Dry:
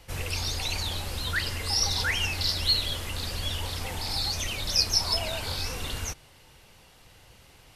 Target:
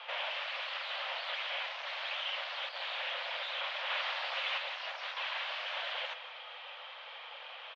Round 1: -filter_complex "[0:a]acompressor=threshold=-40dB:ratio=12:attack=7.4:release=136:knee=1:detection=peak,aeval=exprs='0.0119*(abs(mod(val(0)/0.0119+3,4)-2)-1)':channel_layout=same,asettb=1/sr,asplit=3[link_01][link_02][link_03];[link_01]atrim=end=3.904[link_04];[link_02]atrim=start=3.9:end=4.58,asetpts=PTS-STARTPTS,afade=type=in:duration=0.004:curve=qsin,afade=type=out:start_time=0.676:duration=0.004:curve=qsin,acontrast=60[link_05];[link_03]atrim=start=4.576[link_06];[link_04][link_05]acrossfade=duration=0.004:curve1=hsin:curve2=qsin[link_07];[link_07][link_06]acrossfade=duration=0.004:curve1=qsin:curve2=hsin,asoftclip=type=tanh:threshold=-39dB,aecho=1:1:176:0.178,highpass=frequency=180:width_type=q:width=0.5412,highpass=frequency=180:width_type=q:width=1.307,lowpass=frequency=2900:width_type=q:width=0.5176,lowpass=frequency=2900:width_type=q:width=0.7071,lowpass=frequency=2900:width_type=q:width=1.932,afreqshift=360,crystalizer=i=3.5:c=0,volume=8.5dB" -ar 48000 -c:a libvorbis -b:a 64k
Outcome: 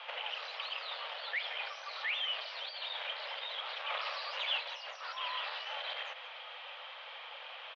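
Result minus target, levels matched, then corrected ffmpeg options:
downward compressor: peak gain reduction +8.5 dB
-filter_complex "[0:a]acompressor=threshold=-30.5dB:ratio=12:attack=7.4:release=136:knee=1:detection=peak,aeval=exprs='0.0119*(abs(mod(val(0)/0.0119+3,4)-2)-1)':channel_layout=same,asettb=1/sr,asplit=3[link_01][link_02][link_03];[link_01]atrim=end=3.904[link_04];[link_02]atrim=start=3.9:end=4.58,asetpts=PTS-STARTPTS,afade=type=in:duration=0.004:curve=qsin,afade=type=out:start_time=0.676:duration=0.004:curve=qsin,acontrast=60[link_05];[link_03]atrim=start=4.576[link_06];[link_04][link_05]acrossfade=duration=0.004:curve1=hsin:curve2=qsin[link_07];[link_07][link_06]acrossfade=duration=0.004:curve1=qsin:curve2=hsin,asoftclip=type=tanh:threshold=-39dB,aecho=1:1:176:0.178,highpass=frequency=180:width_type=q:width=0.5412,highpass=frequency=180:width_type=q:width=1.307,lowpass=frequency=2900:width_type=q:width=0.5176,lowpass=frequency=2900:width_type=q:width=0.7071,lowpass=frequency=2900:width_type=q:width=1.932,afreqshift=360,crystalizer=i=3.5:c=0,volume=8.5dB" -ar 48000 -c:a libvorbis -b:a 64k

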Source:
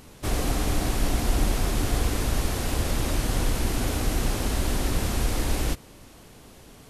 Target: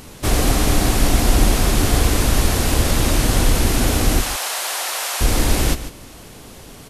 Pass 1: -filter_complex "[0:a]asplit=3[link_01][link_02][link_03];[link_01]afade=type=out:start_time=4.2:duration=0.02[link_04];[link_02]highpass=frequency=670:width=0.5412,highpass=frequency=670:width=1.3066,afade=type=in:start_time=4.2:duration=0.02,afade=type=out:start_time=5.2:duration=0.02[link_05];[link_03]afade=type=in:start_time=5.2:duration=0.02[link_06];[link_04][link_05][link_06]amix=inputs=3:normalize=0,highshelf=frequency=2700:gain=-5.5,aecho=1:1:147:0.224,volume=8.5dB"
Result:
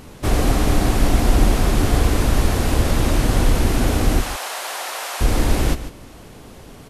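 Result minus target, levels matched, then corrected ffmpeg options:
4,000 Hz band −4.0 dB
-filter_complex "[0:a]asplit=3[link_01][link_02][link_03];[link_01]afade=type=out:start_time=4.2:duration=0.02[link_04];[link_02]highpass=frequency=670:width=0.5412,highpass=frequency=670:width=1.3066,afade=type=in:start_time=4.2:duration=0.02,afade=type=out:start_time=5.2:duration=0.02[link_05];[link_03]afade=type=in:start_time=5.2:duration=0.02[link_06];[link_04][link_05][link_06]amix=inputs=3:normalize=0,highshelf=frequency=2700:gain=2.5,aecho=1:1:147:0.224,volume=8.5dB"

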